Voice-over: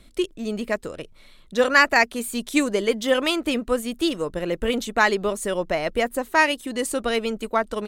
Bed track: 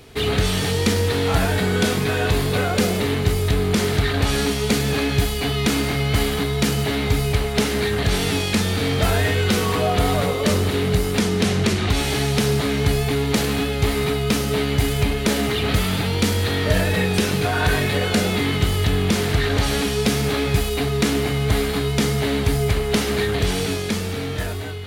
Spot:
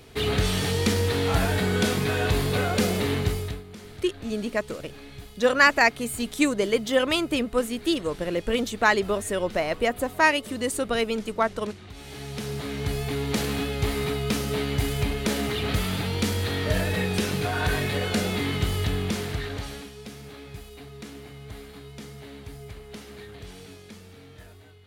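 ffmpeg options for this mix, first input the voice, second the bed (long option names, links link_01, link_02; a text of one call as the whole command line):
ffmpeg -i stem1.wav -i stem2.wav -filter_complex "[0:a]adelay=3850,volume=-1.5dB[link_01];[1:a]volume=13.5dB,afade=type=out:start_time=3.18:duration=0.45:silence=0.105925,afade=type=in:start_time=11.94:duration=1.48:silence=0.133352,afade=type=out:start_time=18.78:duration=1.14:silence=0.16788[link_02];[link_01][link_02]amix=inputs=2:normalize=0" out.wav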